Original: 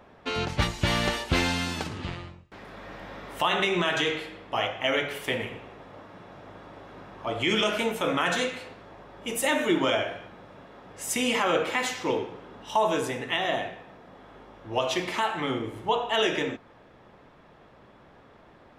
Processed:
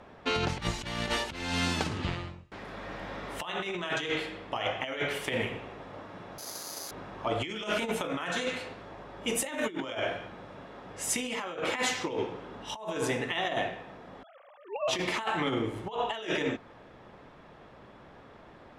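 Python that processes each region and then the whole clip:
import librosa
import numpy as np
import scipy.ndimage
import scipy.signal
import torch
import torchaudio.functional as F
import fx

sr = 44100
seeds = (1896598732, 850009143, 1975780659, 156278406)

y = fx.chain(x, sr, fx.highpass(hz=410.0, slope=6),
    fx.resample_bad(factor=8, down='none', up='zero_stuff'),
    fx.band_widen(depth_pct=40), at=(6.38, 6.91))
y = fx.chain(y, sr, fx.sine_speech(),
    fx.low_shelf(hz=340.0, db=-3.0), at=(14.23, 14.88))
y = scipy.signal.sosfilt(scipy.signal.butter(2, 11000.0, 'lowpass', fs=sr, output='sos'), y)
y = fx.over_compress(y, sr, threshold_db=-29.0, ratio=-0.5)
y = y * librosa.db_to_amplitude(-1.5)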